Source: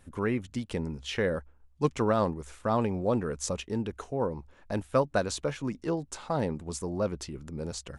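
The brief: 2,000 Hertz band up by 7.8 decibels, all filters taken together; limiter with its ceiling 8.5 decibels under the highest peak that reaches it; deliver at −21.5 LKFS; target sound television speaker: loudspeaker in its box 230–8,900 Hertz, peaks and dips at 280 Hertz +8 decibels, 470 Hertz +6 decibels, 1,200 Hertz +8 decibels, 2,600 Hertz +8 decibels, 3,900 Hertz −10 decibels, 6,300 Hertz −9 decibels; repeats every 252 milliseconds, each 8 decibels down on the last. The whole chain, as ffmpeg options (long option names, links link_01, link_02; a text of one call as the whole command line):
ffmpeg -i in.wav -af "equalizer=frequency=2000:width_type=o:gain=7,alimiter=limit=-19dB:level=0:latency=1,highpass=frequency=230:width=0.5412,highpass=frequency=230:width=1.3066,equalizer=frequency=280:width_type=q:width=4:gain=8,equalizer=frequency=470:width_type=q:width=4:gain=6,equalizer=frequency=1200:width_type=q:width=4:gain=8,equalizer=frequency=2600:width_type=q:width=4:gain=8,equalizer=frequency=3900:width_type=q:width=4:gain=-10,equalizer=frequency=6300:width_type=q:width=4:gain=-9,lowpass=frequency=8900:width=0.5412,lowpass=frequency=8900:width=1.3066,aecho=1:1:252|504|756|1008|1260:0.398|0.159|0.0637|0.0255|0.0102,volume=7.5dB" out.wav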